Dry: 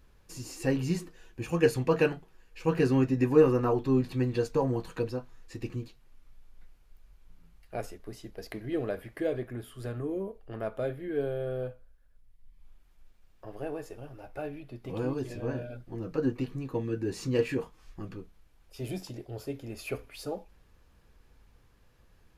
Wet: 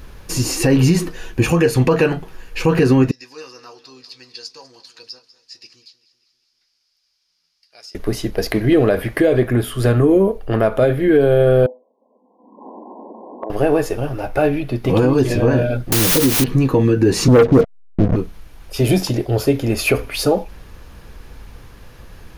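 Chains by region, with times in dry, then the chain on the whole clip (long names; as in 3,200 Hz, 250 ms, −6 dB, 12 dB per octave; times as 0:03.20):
0:03.11–0:07.95: resonant band-pass 5,000 Hz, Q 7.7 + repeating echo 196 ms, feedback 56%, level −17 dB
0:11.66–0:13.50: linear-phase brick-wall band-pass 210–1,100 Hz + multiband upward and downward compressor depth 100%
0:15.92–0:16.44: Bessel low-pass filter 590 Hz, order 6 + bit-depth reduction 6 bits, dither triangular
0:17.28–0:18.16: hold until the input has moved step −38.5 dBFS + Chebyshev low-pass with heavy ripple 700 Hz, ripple 3 dB + leveller curve on the samples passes 3
whole clip: notch filter 7,600 Hz, Q 9.9; downward compressor 6 to 1, threshold −29 dBFS; boost into a limiter +26 dB; level −4 dB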